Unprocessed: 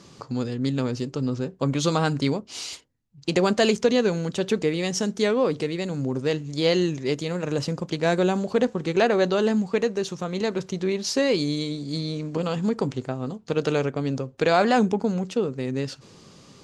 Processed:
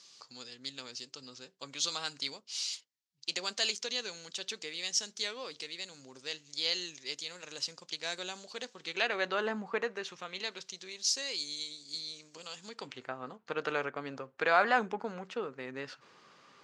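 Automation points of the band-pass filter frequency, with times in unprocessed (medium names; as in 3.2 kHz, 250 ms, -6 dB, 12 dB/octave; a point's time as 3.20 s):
band-pass filter, Q 1.3
8.72 s 4.9 kHz
9.62 s 1.1 kHz
10.90 s 6.1 kHz
12.57 s 6.1 kHz
13.14 s 1.5 kHz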